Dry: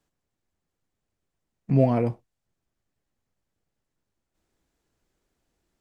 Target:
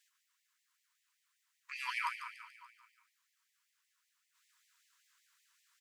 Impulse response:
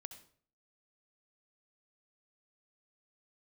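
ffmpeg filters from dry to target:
-filter_complex "[0:a]aecho=1:1:144|288|432|576|720|864|1008:0.376|0.214|0.122|0.0696|0.0397|0.0226|0.0129[s0];[1:a]atrim=start_sample=2205,atrim=end_sample=3528[s1];[s0][s1]afir=irnorm=-1:irlink=0,afftfilt=real='re*gte(b*sr/1024,900*pow(1800/900,0.5+0.5*sin(2*PI*5.2*pts/sr)))':imag='im*gte(b*sr/1024,900*pow(1800/900,0.5+0.5*sin(2*PI*5.2*pts/sr)))':win_size=1024:overlap=0.75,volume=5.01"

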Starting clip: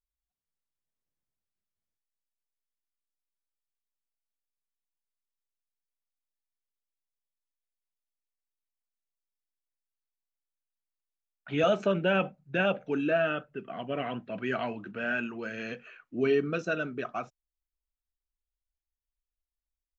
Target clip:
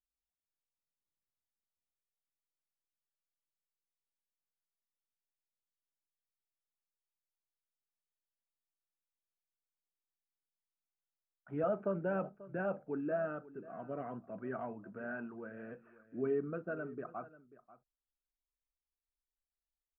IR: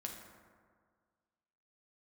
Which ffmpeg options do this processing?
-filter_complex "[0:a]lowpass=f=1400:w=0.5412,lowpass=f=1400:w=1.3066,asplit=2[s0][s1];[s1]aecho=0:1:539:0.133[s2];[s0][s2]amix=inputs=2:normalize=0,volume=0.376"

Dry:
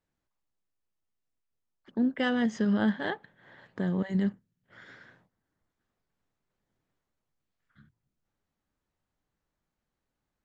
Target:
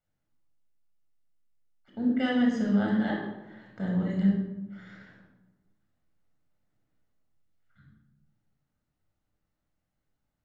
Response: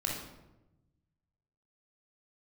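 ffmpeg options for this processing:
-filter_complex "[1:a]atrim=start_sample=2205[s0];[0:a][s0]afir=irnorm=-1:irlink=0,volume=0.531"

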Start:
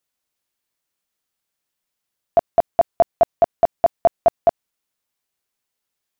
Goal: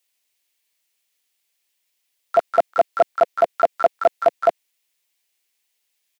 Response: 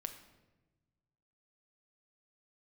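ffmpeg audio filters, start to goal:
-filter_complex "[0:a]acrossover=split=240 2000:gain=0.126 1 0.141[s0][s1][s2];[s0][s1][s2]amix=inputs=3:normalize=0,aexciter=amount=8.7:drive=7:freq=2100,asplit=3[s3][s4][s5];[s4]asetrate=33038,aresample=44100,atempo=1.33484,volume=0.158[s6];[s5]asetrate=88200,aresample=44100,atempo=0.5,volume=0.316[s7];[s3][s6][s7]amix=inputs=3:normalize=0"

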